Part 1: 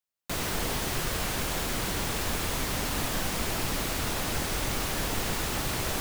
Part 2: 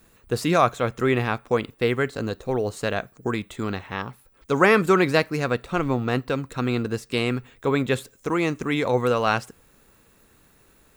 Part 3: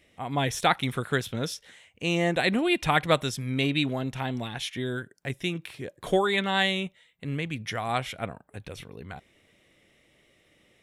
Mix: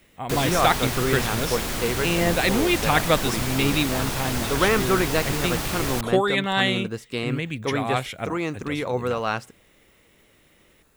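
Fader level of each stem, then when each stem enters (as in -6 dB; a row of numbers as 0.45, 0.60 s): +2.5, -4.0, +2.5 dB; 0.00, 0.00, 0.00 s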